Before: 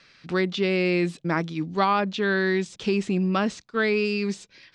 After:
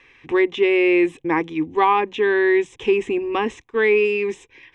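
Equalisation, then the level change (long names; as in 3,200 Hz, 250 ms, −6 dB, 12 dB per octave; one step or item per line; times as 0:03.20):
high-shelf EQ 5,800 Hz −11.5 dB
phaser with its sweep stopped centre 930 Hz, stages 8
+8.5 dB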